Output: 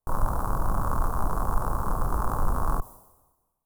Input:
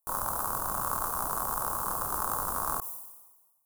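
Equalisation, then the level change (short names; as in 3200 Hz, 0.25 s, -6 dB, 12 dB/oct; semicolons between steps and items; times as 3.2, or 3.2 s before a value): tilt -4 dB/oct; +1.5 dB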